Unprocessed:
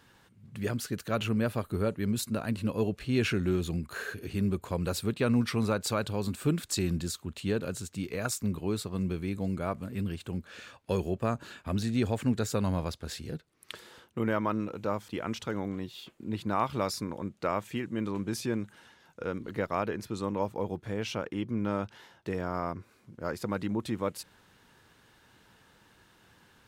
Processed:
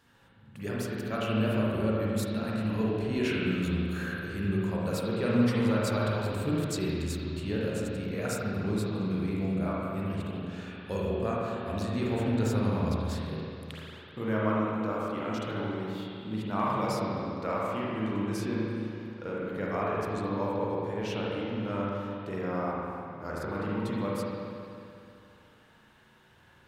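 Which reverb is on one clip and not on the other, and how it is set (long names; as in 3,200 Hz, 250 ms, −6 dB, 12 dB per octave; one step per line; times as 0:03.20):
spring reverb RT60 2.6 s, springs 37/50 ms, chirp 40 ms, DRR −6 dB
level −5.5 dB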